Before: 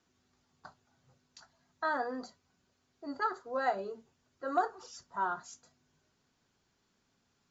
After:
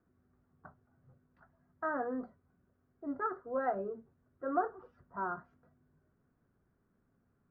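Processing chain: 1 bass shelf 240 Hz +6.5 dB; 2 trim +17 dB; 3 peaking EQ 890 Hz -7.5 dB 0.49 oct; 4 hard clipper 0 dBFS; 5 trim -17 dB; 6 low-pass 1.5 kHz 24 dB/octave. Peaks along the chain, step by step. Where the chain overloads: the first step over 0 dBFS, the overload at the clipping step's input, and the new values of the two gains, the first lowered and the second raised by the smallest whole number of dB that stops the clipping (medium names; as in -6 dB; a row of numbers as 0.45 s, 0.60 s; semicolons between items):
-17.5 dBFS, -0.5 dBFS, -2.0 dBFS, -2.0 dBFS, -19.0 dBFS, -19.5 dBFS; nothing clips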